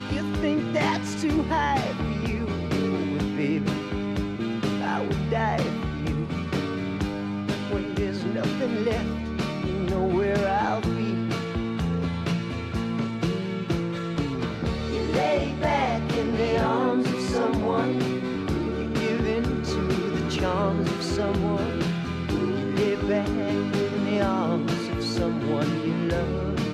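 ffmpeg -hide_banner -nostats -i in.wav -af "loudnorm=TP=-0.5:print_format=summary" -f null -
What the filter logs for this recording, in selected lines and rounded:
Input Integrated:    -26.2 LUFS
Input True Peak:     -11.1 dBTP
Input LRA:             2.6 LU
Input Threshold:     -36.2 LUFS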